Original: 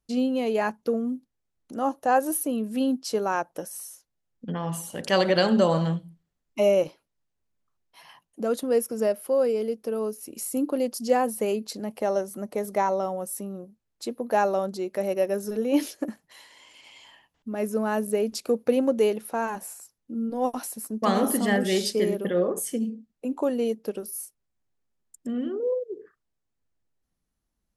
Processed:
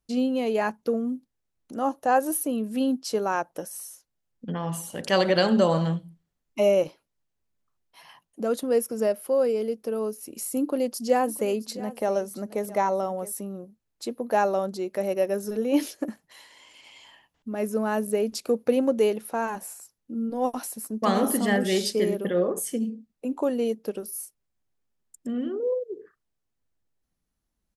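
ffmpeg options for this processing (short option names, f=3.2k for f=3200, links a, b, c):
-filter_complex "[0:a]asplit=3[a][b][c];[a]afade=t=out:st=11.15:d=0.02[d];[b]aecho=1:1:667:0.141,afade=t=in:st=11.15:d=0.02,afade=t=out:st=13.31:d=0.02[e];[c]afade=t=in:st=13.31:d=0.02[f];[d][e][f]amix=inputs=3:normalize=0"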